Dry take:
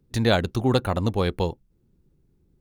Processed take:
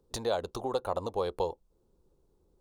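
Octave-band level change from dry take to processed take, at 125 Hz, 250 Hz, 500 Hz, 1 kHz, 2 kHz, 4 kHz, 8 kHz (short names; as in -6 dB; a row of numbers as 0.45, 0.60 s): -20.0 dB, -16.5 dB, -6.0 dB, -5.5 dB, -16.5 dB, -12.0 dB, n/a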